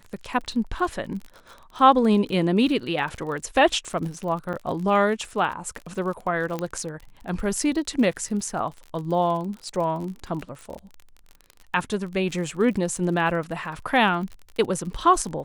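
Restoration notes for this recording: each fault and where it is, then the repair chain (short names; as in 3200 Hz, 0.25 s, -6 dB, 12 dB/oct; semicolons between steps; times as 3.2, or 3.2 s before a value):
crackle 40/s -32 dBFS
4.53–4.54 gap 6.2 ms
6.59 pop -15 dBFS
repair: de-click; interpolate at 4.53, 6.2 ms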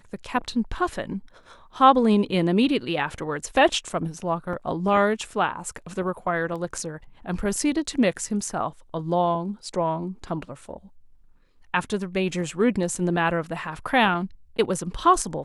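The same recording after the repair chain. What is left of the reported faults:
6.59 pop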